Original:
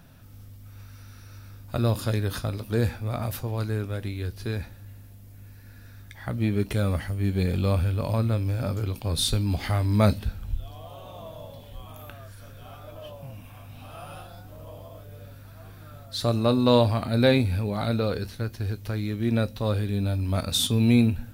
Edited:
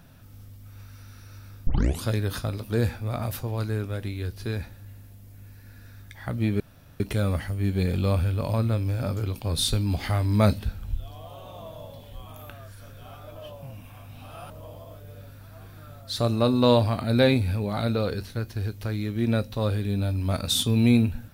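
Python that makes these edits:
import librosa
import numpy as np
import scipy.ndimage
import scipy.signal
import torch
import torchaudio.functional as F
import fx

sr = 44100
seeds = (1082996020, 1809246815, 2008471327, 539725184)

y = fx.edit(x, sr, fx.tape_start(start_s=1.67, length_s=0.36),
    fx.insert_room_tone(at_s=6.6, length_s=0.4),
    fx.cut(start_s=14.1, length_s=0.44), tone=tone)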